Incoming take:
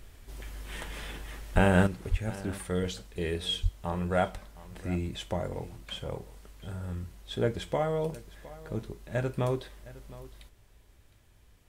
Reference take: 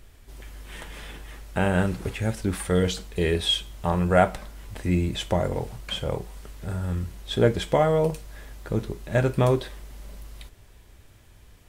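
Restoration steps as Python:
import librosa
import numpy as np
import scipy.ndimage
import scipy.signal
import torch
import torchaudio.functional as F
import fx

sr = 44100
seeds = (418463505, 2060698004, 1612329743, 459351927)

y = fx.fix_deplosive(x, sr, at_s=(1.54, 2.1, 3.62))
y = fx.fix_echo_inverse(y, sr, delay_ms=712, level_db=-18.5)
y = fx.gain(y, sr, db=fx.steps((0.0, 0.0), (1.87, 8.5)))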